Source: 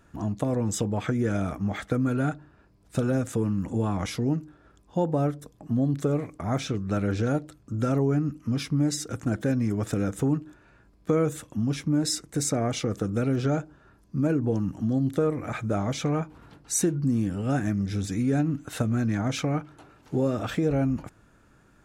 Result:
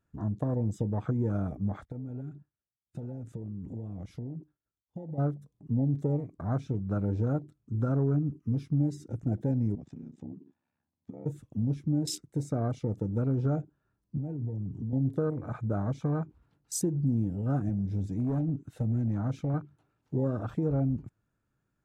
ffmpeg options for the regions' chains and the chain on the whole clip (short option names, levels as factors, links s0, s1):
-filter_complex "[0:a]asettb=1/sr,asplit=3[s0][s1][s2];[s0]atrim=end=1.854[s3];[s1]atrim=start=1.85:end=5.18,asetpts=PTS-STARTPTS,afade=t=in:d=0.004:c=qsin,afade=t=out:st=3.326:d=0.004:c=qsin,highshelf=f=8600:g=-5,acompressor=threshold=0.0282:ratio=16:attack=3.2:release=140:knee=1:detection=peak,agate=range=0.0224:threshold=0.00501:ratio=3:release=100:detection=peak[s4];[s2]atrim=start=5.176[s5];[s3][s4]acrossfade=d=0.004:c1=hsin:c2=qsin[s6];[s6][s5]acrossfade=d=0.004:c1=qsin:c2=hsin,asettb=1/sr,asplit=3[s7][s8][s9];[s7]atrim=end=9.754[s10];[s8]atrim=start=9.75:end=11.26,asetpts=PTS-STARTPTS,afade=t=in:d=0.004:c=qsin,afade=t=out:st=1.506:d=0.004:c=qsin,acompressor=threshold=0.0316:ratio=8:attack=3.2:release=140:knee=1:detection=peak,aeval=exprs='val(0)*sin(2*PI*34*n/s)':c=same,highpass=120,equalizer=f=130:t=q:w=4:g=-7,equalizer=f=240:t=q:w=4:g=4,equalizer=f=400:t=q:w=4:g=-10,equalizer=f=820:t=q:w=4:g=7,equalizer=f=1400:t=q:w=4:g=-9,lowpass=f=6600:w=0.5412,lowpass=f=6600:w=1.3066[s11];[s9]atrim=start=11.256[s12];[s10][s11]acrossfade=d=0.004:c1=hsin:c2=qsin[s13];[s13][s12]acrossfade=d=0.004:c1=qsin:c2=hsin,asettb=1/sr,asplit=3[s14][s15][s16];[s14]atrim=end=14.174[s17];[s15]atrim=start=14.17:end=14.93,asetpts=PTS-STARTPTS,afade=t=in:d=0.004:c=qsin,afade=t=out:st=0.756:d=0.004:c=qsin,highpass=f=69:w=0.5412,highpass=f=69:w=1.3066,equalizer=f=110:w=1:g=7,acompressor=threshold=0.0398:ratio=10:attack=3.2:release=140:knee=1:detection=peak[s18];[s16]atrim=start=14.926[s19];[s17][s18]acrossfade=d=0.004:c1=hsin:c2=qsin[s20];[s20][s19]acrossfade=d=0.004:c1=qsin:c2=hsin,asettb=1/sr,asplit=3[s21][s22][s23];[s21]atrim=end=17.694[s24];[s22]atrim=start=17.69:end=19.54,asetpts=PTS-STARTPTS,afade=t=in:d=0.004:c=qsin,afade=t=out:st=1.846:d=0.004:c=qsin,highpass=f=43:w=0.5412,highpass=f=43:w=1.3066,asoftclip=type=hard:threshold=0.0841[s25];[s23]atrim=start=19.536[s26];[s24][s25]acrossfade=d=0.004:c1=hsin:c2=qsin[s27];[s27][s26]acrossfade=d=0.004:c1=qsin:c2=hsin,afwtdn=0.0224,equalizer=f=120:w=1.1:g=6.5,volume=0.473"